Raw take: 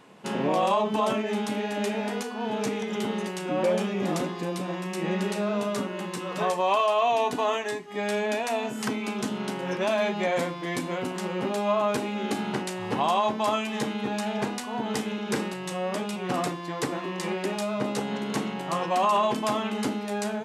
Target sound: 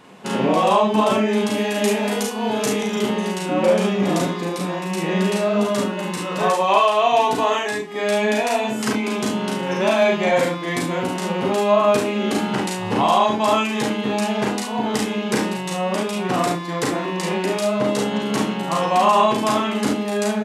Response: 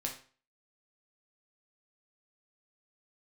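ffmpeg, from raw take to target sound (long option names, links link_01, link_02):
-filter_complex "[0:a]asettb=1/sr,asplit=3[link_01][link_02][link_03];[link_01]atrim=end=1.524[link_04];[link_02]atrim=start=1.52:end=2.95,asetpts=PTS-STARTPTS,afade=type=in:duration=0.004:curve=qsin,afade=type=out:start_time=1.426:duration=0.004:curve=qsin,highshelf=frequency=7100:gain=10[link_05];[link_03]atrim=start=2.946[link_06];[link_04][link_05]acrossfade=duration=0.004:curve1=hsin:curve2=qsin[link_07];[link_07][link_06]acrossfade=duration=0.004:curve1=qsin:curve2=hsin,aecho=1:1:37|47|71:0.668|0.562|0.398,volume=5dB"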